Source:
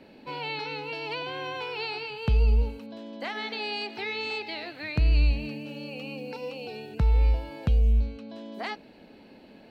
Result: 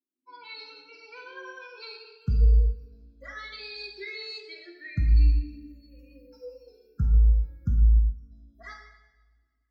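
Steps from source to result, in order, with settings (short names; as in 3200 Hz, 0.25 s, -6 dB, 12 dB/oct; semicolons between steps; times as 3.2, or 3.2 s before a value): per-bin expansion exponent 3; fixed phaser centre 2900 Hz, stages 6; two-slope reverb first 0.97 s, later 2.6 s, from -23 dB, DRR -0.5 dB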